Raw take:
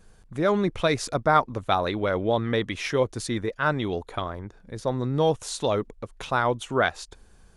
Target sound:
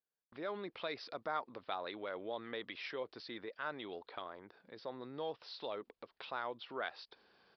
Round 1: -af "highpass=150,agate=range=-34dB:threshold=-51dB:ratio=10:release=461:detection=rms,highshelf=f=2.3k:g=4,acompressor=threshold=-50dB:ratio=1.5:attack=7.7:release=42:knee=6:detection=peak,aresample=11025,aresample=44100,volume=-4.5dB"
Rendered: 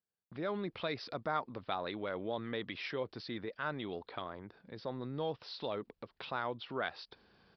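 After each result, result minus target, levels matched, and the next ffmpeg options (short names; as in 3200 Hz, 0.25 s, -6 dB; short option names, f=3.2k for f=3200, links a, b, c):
125 Hz band +10.0 dB; compressor: peak gain reduction -3 dB
-af "highpass=350,agate=range=-34dB:threshold=-51dB:ratio=10:release=461:detection=rms,highshelf=f=2.3k:g=4,acompressor=threshold=-50dB:ratio=1.5:attack=7.7:release=42:knee=6:detection=peak,aresample=11025,aresample=44100,volume=-4.5dB"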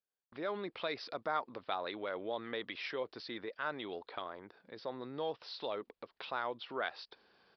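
compressor: peak gain reduction -3 dB
-af "highpass=350,agate=range=-34dB:threshold=-51dB:ratio=10:release=461:detection=rms,highshelf=f=2.3k:g=4,acompressor=threshold=-59.5dB:ratio=1.5:attack=7.7:release=42:knee=6:detection=peak,aresample=11025,aresample=44100,volume=-4.5dB"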